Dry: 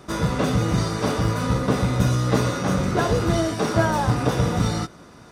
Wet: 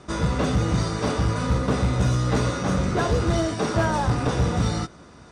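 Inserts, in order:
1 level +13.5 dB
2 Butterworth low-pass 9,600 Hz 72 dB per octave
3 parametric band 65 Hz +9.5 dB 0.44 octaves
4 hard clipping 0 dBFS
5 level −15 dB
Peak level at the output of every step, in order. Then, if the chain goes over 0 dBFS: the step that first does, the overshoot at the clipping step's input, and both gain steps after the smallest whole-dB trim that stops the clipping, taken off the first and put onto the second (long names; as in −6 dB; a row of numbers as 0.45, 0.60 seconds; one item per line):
+9.0, +9.0, +9.5, 0.0, −15.0 dBFS
step 1, 9.5 dB
step 1 +3.5 dB, step 5 −5 dB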